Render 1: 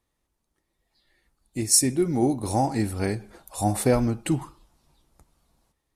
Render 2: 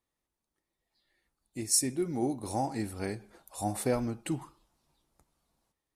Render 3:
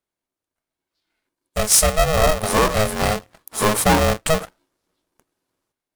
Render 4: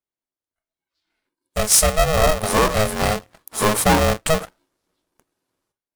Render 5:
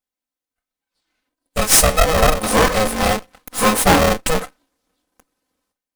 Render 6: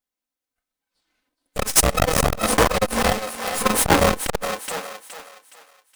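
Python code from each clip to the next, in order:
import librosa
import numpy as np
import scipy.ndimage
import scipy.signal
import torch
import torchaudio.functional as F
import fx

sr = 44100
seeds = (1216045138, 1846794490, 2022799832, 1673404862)

y1 = fx.low_shelf(x, sr, hz=110.0, db=-7.5)
y1 = y1 * librosa.db_to_amplitude(-7.5)
y2 = fx.leveller(y1, sr, passes=3)
y2 = y2 * np.sign(np.sin(2.0 * np.pi * 320.0 * np.arange(len(y2)) / sr))
y2 = y2 * librosa.db_to_amplitude(5.0)
y3 = fx.noise_reduce_blind(y2, sr, reduce_db=9)
y4 = fx.lower_of_two(y3, sr, delay_ms=3.9)
y4 = y4 * librosa.db_to_amplitude(4.5)
y5 = fx.echo_thinned(y4, sr, ms=418, feedback_pct=36, hz=470.0, wet_db=-8.5)
y5 = fx.transformer_sat(y5, sr, knee_hz=370.0)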